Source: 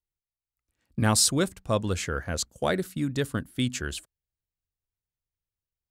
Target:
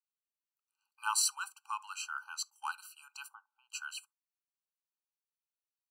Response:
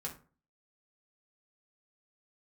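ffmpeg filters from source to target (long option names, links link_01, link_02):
-filter_complex "[0:a]asettb=1/sr,asplit=3[link_01][link_02][link_03];[link_01]atrim=end=2.244[link_04];[link_02]atrim=start=2.24:end=2.68,asetpts=PTS-STARTPTS,afade=type=in:duration=0.004:curve=qsin,afade=type=out:start_time=0.436:duration=0.004:curve=qsin,aeval=exprs='0.237*(cos(1*acos(clip(val(0)/0.237,-1,1)))-cos(1*PI/2))+0.015*(cos(3*acos(clip(val(0)/0.237,-1,1)))-cos(3*PI/2))':channel_layout=same[link_05];[link_03]atrim=start=2.676[link_06];[link_04][link_05]acrossfade=duration=0.004:curve1=hsin:curve2=qsin[link_07];[link_07][link_06]acrossfade=duration=0.004:curve1=qsin:curve2=hsin,asplit=3[link_08][link_09][link_10];[link_08]afade=type=out:start_time=3.27:duration=0.02[link_11];[link_09]lowpass=frequency=580:width_type=q:width=7.2,afade=type=in:start_time=3.27:duration=0.02,afade=type=out:start_time=3.69:duration=0.02[link_12];[link_10]afade=type=in:start_time=3.69:duration=0.02[link_13];[link_11][link_12][link_13]amix=inputs=3:normalize=0,asplit=2[link_14][link_15];[1:a]atrim=start_sample=2205,atrim=end_sample=3528[link_16];[link_15][link_16]afir=irnorm=-1:irlink=0,volume=-13.5dB[link_17];[link_14][link_17]amix=inputs=2:normalize=0,afftfilt=real='re*eq(mod(floor(b*sr/1024/790),2),1)':imag='im*eq(mod(floor(b*sr/1024/790),2),1)':win_size=1024:overlap=0.75,volume=-5dB"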